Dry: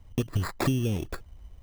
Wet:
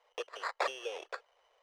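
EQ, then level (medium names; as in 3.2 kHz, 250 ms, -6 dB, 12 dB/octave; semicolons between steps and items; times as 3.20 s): elliptic high-pass 480 Hz, stop band 50 dB; distance through air 120 m; +1.0 dB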